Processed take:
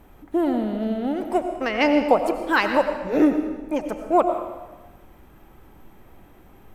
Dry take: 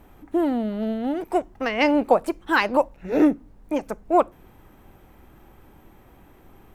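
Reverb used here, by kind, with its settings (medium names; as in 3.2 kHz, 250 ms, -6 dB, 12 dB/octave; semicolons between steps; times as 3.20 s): algorithmic reverb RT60 1.2 s, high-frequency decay 0.95×, pre-delay 55 ms, DRR 6.5 dB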